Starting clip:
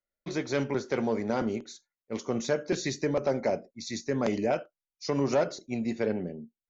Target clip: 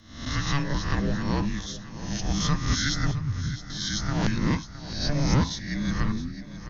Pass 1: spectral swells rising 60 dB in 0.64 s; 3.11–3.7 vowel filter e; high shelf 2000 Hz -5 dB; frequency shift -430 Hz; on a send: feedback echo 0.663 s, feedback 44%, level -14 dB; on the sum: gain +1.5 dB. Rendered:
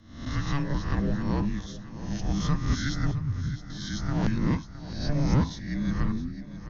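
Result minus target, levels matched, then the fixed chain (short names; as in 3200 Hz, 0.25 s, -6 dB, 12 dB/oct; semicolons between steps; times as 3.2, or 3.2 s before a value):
4000 Hz band -7.0 dB
spectral swells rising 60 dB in 0.64 s; 3.11–3.7 vowel filter e; high shelf 2000 Hz +5.5 dB; frequency shift -430 Hz; on a send: feedback echo 0.663 s, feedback 44%, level -14 dB; on the sum: gain +1.5 dB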